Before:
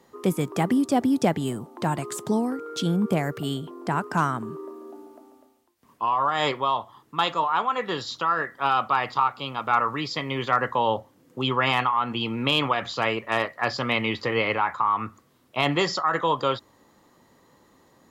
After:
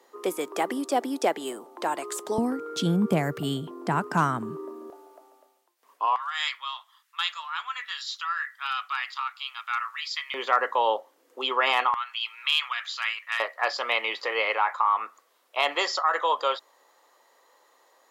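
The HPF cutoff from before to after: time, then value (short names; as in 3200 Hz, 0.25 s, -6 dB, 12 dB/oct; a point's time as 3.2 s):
HPF 24 dB/oct
350 Hz
from 2.38 s 110 Hz
from 4.9 s 450 Hz
from 6.16 s 1500 Hz
from 10.34 s 410 Hz
from 11.94 s 1400 Hz
from 13.4 s 500 Hz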